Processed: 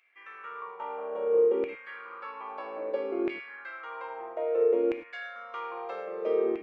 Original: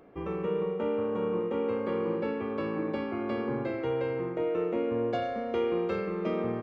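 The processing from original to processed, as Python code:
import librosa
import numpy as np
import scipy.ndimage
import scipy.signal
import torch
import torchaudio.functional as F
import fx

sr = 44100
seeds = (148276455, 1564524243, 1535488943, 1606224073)

y = fx.filter_lfo_highpass(x, sr, shape='saw_down', hz=0.61, low_hz=350.0, high_hz=2400.0, q=5.7)
y = fx.rev_gated(y, sr, seeds[0], gate_ms=130, shape='flat', drr_db=8.0)
y = y * 10.0 ** (-6.5 / 20.0)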